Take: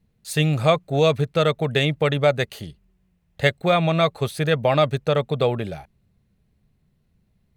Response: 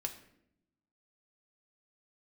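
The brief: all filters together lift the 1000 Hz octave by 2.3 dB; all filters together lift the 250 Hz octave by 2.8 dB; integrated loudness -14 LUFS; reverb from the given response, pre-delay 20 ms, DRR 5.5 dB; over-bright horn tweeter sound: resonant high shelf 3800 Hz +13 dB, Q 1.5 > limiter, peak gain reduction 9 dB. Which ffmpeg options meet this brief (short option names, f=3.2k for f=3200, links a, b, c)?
-filter_complex "[0:a]equalizer=f=250:t=o:g=5,equalizer=f=1k:t=o:g=4,asplit=2[a][b];[1:a]atrim=start_sample=2205,adelay=20[c];[b][c]afir=irnorm=-1:irlink=0,volume=-5dB[d];[a][d]amix=inputs=2:normalize=0,highshelf=f=3.8k:t=q:w=1.5:g=13,volume=7dB,alimiter=limit=-3dB:level=0:latency=1"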